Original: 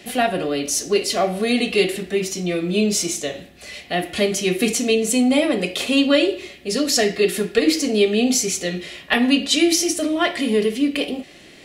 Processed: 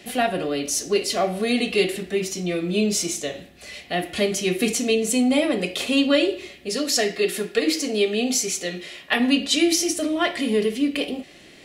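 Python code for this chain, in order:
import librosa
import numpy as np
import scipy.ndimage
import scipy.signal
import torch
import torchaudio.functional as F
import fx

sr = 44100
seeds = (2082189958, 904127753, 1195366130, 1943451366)

y = fx.low_shelf(x, sr, hz=180.0, db=-10.0, at=(6.69, 9.2))
y = y * librosa.db_to_amplitude(-2.5)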